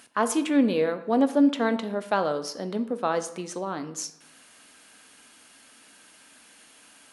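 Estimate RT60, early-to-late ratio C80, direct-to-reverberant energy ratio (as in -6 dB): 0.75 s, 16.0 dB, 9.5 dB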